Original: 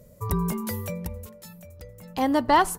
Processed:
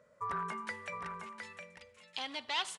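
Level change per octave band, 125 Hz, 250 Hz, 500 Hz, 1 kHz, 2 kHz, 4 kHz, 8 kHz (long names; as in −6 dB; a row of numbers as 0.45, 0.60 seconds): −23.5, −24.0, −19.5, −14.0, −7.0, −1.0, −12.5 decibels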